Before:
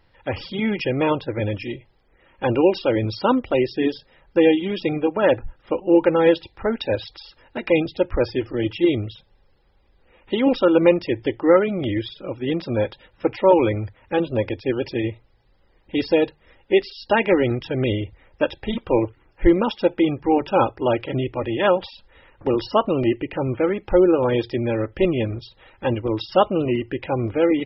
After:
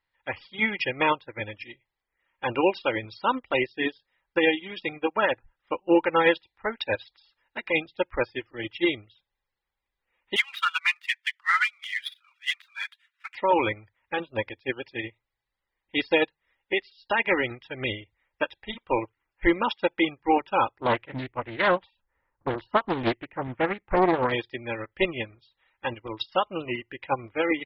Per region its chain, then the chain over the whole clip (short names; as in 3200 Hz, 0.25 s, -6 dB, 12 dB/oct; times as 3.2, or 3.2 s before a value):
10.36–13.35 median filter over 9 samples + steep high-pass 1200 Hz + high shelf 2100 Hz +10.5 dB
20.8–24.32 low-pass opened by the level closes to 990 Hz, open at -12.5 dBFS + tone controls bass +5 dB, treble -10 dB + Doppler distortion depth 0.64 ms
whole clip: graphic EQ 1000/2000/4000 Hz +9/+12/+10 dB; limiter -5.5 dBFS; upward expander 2.5:1, over -29 dBFS; gain -3.5 dB